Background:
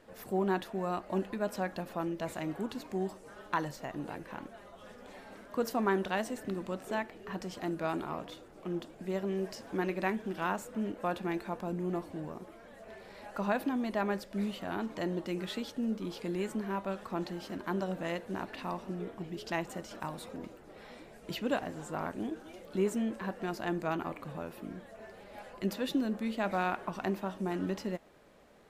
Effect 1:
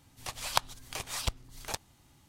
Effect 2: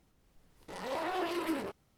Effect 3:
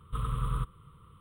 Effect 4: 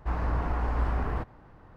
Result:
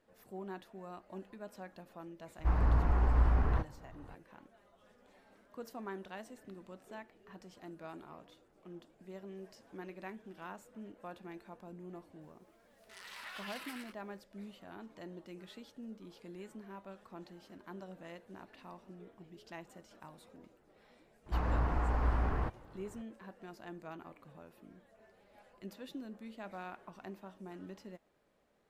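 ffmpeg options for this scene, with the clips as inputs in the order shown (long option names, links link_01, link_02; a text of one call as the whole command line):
ffmpeg -i bed.wav -i cue0.wav -i cue1.wav -i cue2.wav -i cue3.wav -filter_complex "[4:a]asplit=2[link_01][link_02];[0:a]volume=-14dB[link_03];[link_01]lowshelf=frequency=170:gain=6[link_04];[2:a]highpass=frequency=1400:width=0.5412,highpass=frequency=1400:width=1.3066[link_05];[link_04]atrim=end=1.76,asetpts=PTS-STARTPTS,volume=-4.5dB,afade=type=in:duration=0.004:curve=hsin,afade=type=out:start_time=1.756:duration=0.004:curve=hsin,adelay=2390[link_06];[link_05]atrim=end=1.97,asetpts=PTS-STARTPTS,volume=-3.5dB,afade=type=in:duration=0.004:curve=hsin,afade=type=out:start_time=1.966:duration=0.004:curve=hsin,adelay=12210[link_07];[link_02]atrim=end=1.76,asetpts=PTS-STARTPTS,volume=-3.5dB,afade=type=in:duration=0.004:curve=hsin,afade=type=out:start_time=1.756:duration=0.004:curve=hsin,adelay=21260[link_08];[link_03][link_06][link_07][link_08]amix=inputs=4:normalize=0" out.wav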